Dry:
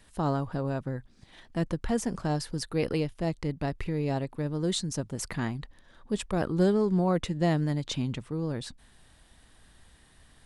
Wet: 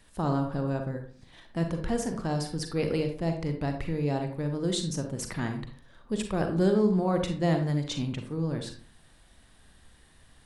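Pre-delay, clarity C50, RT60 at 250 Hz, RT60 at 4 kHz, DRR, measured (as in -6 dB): 36 ms, 7.0 dB, 0.50 s, 0.25 s, 5.0 dB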